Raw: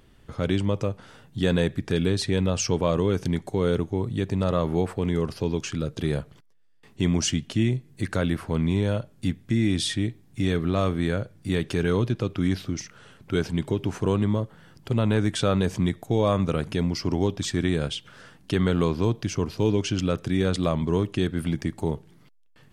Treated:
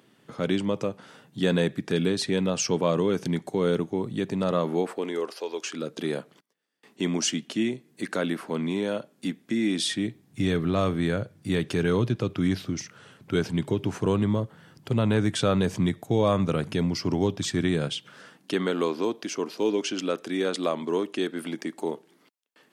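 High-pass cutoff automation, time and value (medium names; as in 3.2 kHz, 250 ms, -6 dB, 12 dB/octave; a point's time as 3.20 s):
high-pass 24 dB/octave
4.50 s 150 Hz
5.49 s 460 Hz
5.87 s 210 Hz
9.72 s 210 Hz
10.42 s 99 Hz
17.62 s 99 Hz
18.79 s 260 Hz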